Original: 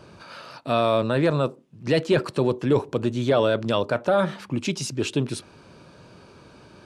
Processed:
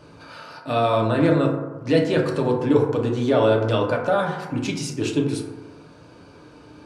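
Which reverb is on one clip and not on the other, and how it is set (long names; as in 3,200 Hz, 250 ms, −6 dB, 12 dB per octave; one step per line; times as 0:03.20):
feedback delay network reverb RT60 1.2 s, low-frequency decay 0.85×, high-frequency decay 0.3×, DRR −1 dB
level −2 dB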